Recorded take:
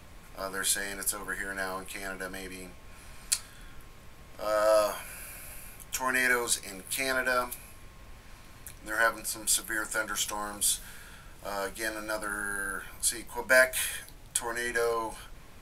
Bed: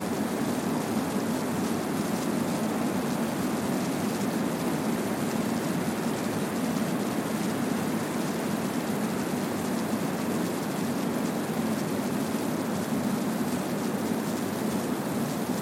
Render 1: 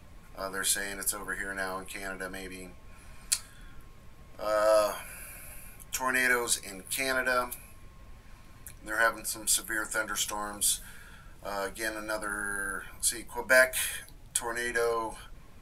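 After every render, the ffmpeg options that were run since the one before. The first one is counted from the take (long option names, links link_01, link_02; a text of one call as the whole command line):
ffmpeg -i in.wav -af "afftdn=noise_reduction=6:noise_floor=-51" out.wav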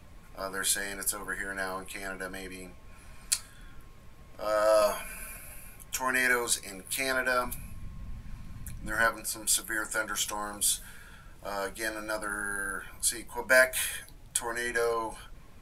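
ffmpeg -i in.wav -filter_complex "[0:a]asettb=1/sr,asplit=3[link_01][link_02][link_03];[link_01]atrim=end=4.814[link_04];[link_02]atrim=start=4.81:end=5.37,asetpts=PTS-STARTPTS,afade=type=in:duration=0.004:curve=qsin,afade=type=out:start_time=0.556:duration=0.004:curve=qsin,aecho=1:1:4.6:0.84,atrim=end_sample=24696[link_05];[link_03]atrim=start=5.366[link_06];[link_04][link_05]acrossfade=duration=0.004:curve1=hsin:curve2=qsin[link_07];[link_07][link_06]acrossfade=duration=0.004:curve1=qsin:curve2=hsin,asettb=1/sr,asplit=3[link_08][link_09][link_10];[link_08]atrim=end=7.454[link_11];[link_09]atrim=start=7.45:end=9.07,asetpts=PTS-STARTPTS,afade=type=in:duration=0.004:curve=qsin,afade=type=out:start_time=1.616:duration=0.004:curve=qsin,lowshelf=frequency=270:width_type=q:width=1.5:gain=9[link_12];[link_10]atrim=start=9.066[link_13];[link_11][link_12]acrossfade=duration=0.004:curve1=hsin:curve2=qsin[link_14];[link_14][link_13]acrossfade=duration=0.004:curve1=qsin:curve2=hsin" out.wav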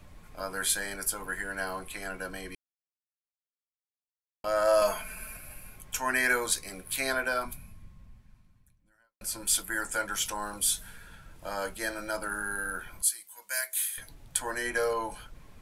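ffmpeg -i in.wav -filter_complex "[0:a]asettb=1/sr,asplit=3[link_01][link_02][link_03];[link_01]atrim=end=13.024[link_04];[link_02]atrim=start=13.02:end=13.98,asetpts=PTS-STARTPTS,afade=type=in:duration=0.004:curve=qsin,afade=type=out:start_time=0.956:duration=0.004:curve=qsin,aderivative[link_05];[link_03]atrim=start=13.976[link_06];[link_04][link_05]acrossfade=duration=0.004:curve1=hsin:curve2=qsin[link_07];[link_07][link_06]acrossfade=duration=0.004:curve1=qsin:curve2=hsin,asplit=4[link_08][link_09][link_10][link_11];[link_08]atrim=end=2.55,asetpts=PTS-STARTPTS,afade=type=out:start_time=2.546:duration=0.004:curve=hsin[link_12];[link_09]atrim=start=2.55:end=4.44,asetpts=PTS-STARTPTS,volume=0[link_13];[link_10]atrim=start=4.44:end=9.21,asetpts=PTS-STARTPTS,afade=type=in:duration=0.004:curve=hsin,afade=type=out:start_time=2.66:duration=2.11:curve=qua[link_14];[link_11]atrim=start=9.21,asetpts=PTS-STARTPTS,afade=type=in:duration=0.004:curve=hsin[link_15];[link_12][link_13][link_14][link_15]concat=n=4:v=0:a=1" out.wav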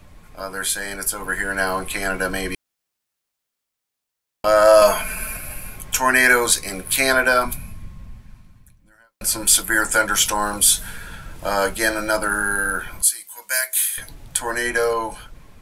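ffmpeg -i in.wav -filter_complex "[0:a]asplit=2[link_01][link_02];[link_02]alimiter=limit=-19.5dB:level=0:latency=1:release=192,volume=-1.5dB[link_03];[link_01][link_03]amix=inputs=2:normalize=0,dynaudnorm=framelen=370:gausssize=7:maxgain=11.5dB" out.wav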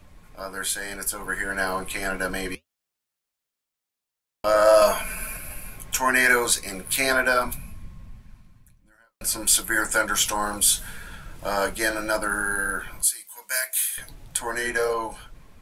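ffmpeg -i in.wav -af "flanger=delay=3:depth=5.3:regen=-70:speed=1.8:shape=triangular,asoftclip=type=hard:threshold=-7.5dB" out.wav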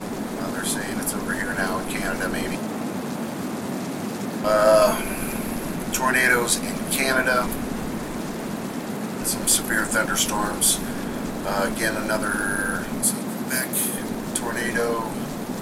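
ffmpeg -i in.wav -i bed.wav -filter_complex "[1:a]volume=-0.5dB[link_01];[0:a][link_01]amix=inputs=2:normalize=0" out.wav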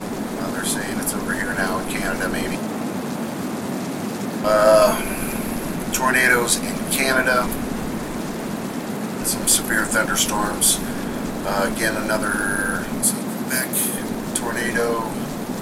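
ffmpeg -i in.wav -af "volume=2.5dB" out.wav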